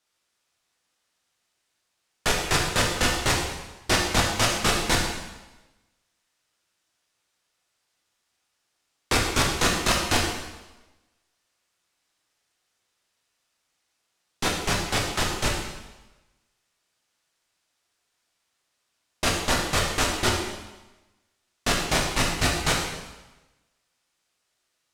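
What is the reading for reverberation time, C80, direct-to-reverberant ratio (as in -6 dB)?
1.1 s, 5.0 dB, -2.5 dB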